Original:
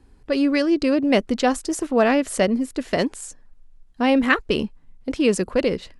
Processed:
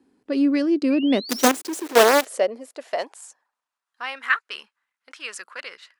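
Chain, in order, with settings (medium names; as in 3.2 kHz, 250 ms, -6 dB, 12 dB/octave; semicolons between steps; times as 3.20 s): 0.90–1.51 s: painted sound rise 2.3–6.9 kHz -30 dBFS; 1.29–2.25 s: companded quantiser 2-bit; high-pass sweep 260 Hz -> 1.4 kHz, 1.19–4.21 s; trim -7 dB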